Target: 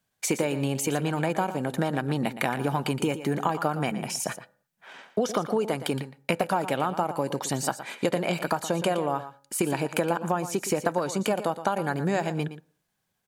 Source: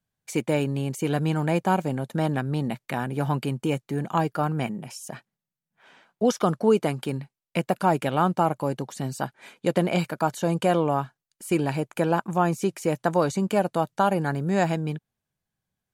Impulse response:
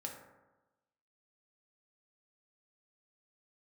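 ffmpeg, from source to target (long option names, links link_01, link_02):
-filter_complex "[0:a]lowshelf=frequency=190:gain=-11,acompressor=threshold=-31dB:ratio=12,atempo=1.2,aecho=1:1:117:0.237,asplit=2[link_01][link_02];[1:a]atrim=start_sample=2205,afade=type=out:start_time=0.29:duration=0.01,atrim=end_sample=13230[link_03];[link_02][link_03]afir=irnorm=-1:irlink=0,volume=-17dB[link_04];[link_01][link_04]amix=inputs=2:normalize=0,volume=8.5dB"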